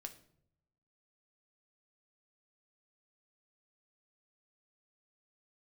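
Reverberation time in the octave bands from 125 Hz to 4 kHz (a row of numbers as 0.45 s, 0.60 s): 1.2 s, 1.0 s, 0.80 s, 0.60 s, 0.50 s, 0.45 s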